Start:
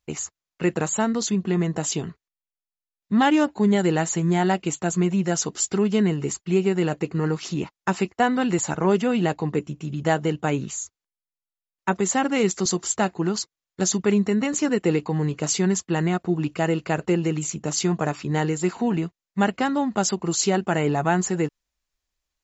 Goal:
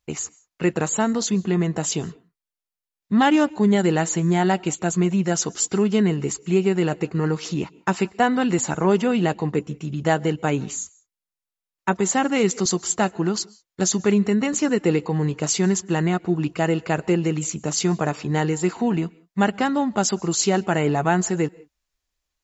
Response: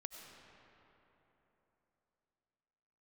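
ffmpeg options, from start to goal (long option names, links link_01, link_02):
-filter_complex "[0:a]asplit=2[link_01][link_02];[1:a]atrim=start_sample=2205,atrim=end_sample=6174,asetrate=31311,aresample=44100[link_03];[link_02][link_03]afir=irnorm=-1:irlink=0,volume=-11dB[link_04];[link_01][link_04]amix=inputs=2:normalize=0"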